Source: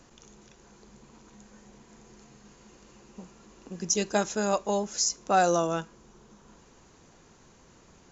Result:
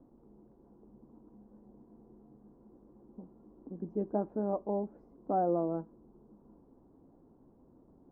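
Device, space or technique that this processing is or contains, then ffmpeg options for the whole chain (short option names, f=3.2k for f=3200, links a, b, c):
under water: -af "lowpass=f=860:w=0.5412,lowpass=f=860:w=1.3066,equalizer=f=280:t=o:w=0.58:g=11,volume=-7dB"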